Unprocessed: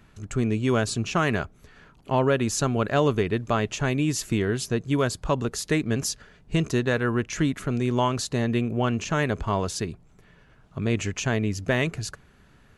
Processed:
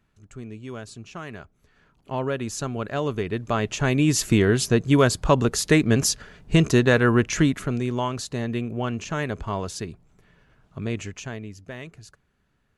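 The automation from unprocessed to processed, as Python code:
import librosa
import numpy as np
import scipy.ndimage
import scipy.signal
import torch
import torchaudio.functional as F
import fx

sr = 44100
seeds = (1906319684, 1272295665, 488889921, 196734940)

y = fx.gain(x, sr, db=fx.line((1.34, -13.5), (2.21, -5.0), (3.02, -5.0), (4.21, 6.0), (7.3, 6.0), (7.99, -3.0), (10.86, -3.0), (11.64, -14.0)))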